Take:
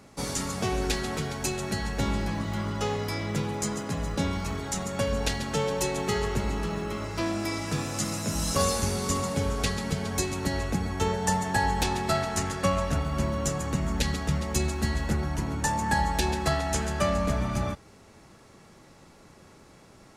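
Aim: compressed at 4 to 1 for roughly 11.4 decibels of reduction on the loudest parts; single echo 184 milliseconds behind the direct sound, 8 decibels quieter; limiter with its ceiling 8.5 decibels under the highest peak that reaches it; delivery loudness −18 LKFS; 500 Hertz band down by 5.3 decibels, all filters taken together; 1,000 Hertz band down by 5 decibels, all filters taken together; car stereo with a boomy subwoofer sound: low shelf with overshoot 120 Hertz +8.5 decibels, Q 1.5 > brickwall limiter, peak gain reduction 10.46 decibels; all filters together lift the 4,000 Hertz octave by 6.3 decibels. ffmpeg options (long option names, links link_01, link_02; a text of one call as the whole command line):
ffmpeg -i in.wav -af "equalizer=frequency=500:width_type=o:gain=-5,equalizer=frequency=1000:width_type=o:gain=-5,equalizer=frequency=4000:width_type=o:gain=8,acompressor=threshold=-35dB:ratio=4,alimiter=level_in=3.5dB:limit=-24dB:level=0:latency=1,volume=-3.5dB,lowshelf=frequency=120:width_type=q:width=1.5:gain=8.5,aecho=1:1:184:0.398,volume=21dB,alimiter=limit=-9.5dB:level=0:latency=1" out.wav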